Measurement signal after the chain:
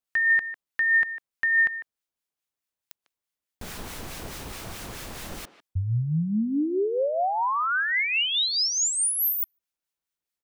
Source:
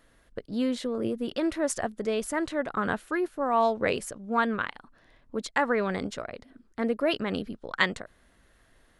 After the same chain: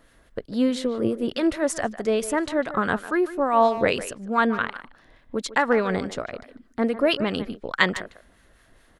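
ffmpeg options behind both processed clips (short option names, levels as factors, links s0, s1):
-filter_complex "[0:a]acrossover=split=1200[s0][s1];[s0]aeval=exprs='val(0)*(1-0.5/2+0.5/2*cos(2*PI*4.7*n/s))':c=same[s2];[s1]aeval=exprs='val(0)*(1-0.5/2-0.5/2*cos(2*PI*4.7*n/s))':c=same[s3];[s2][s3]amix=inputs=2:normalize=0,asplit=2[s4][s5];[s5]adelay=150,highpass=300,lowpass=3400,asoftclip=type=hard:threshold=0.126,volume=0.224[s6];[s4][s6]amix=inputs=2:normalize=0,volume=2.24"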